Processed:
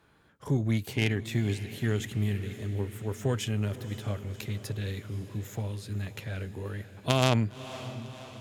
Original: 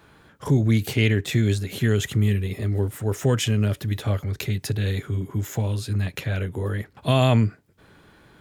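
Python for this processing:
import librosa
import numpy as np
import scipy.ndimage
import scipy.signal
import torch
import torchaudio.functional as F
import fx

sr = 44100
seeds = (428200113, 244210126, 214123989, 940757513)

y = fx.cheby_harmonics(x, sr, harmonics=(3, 5, 7), levels_db=(-8, -15, -25), full_scale_db=-5.5)
y = fx.echo_diffused(y, sr, ms=548, feedback_pct=62, wet_db=-14)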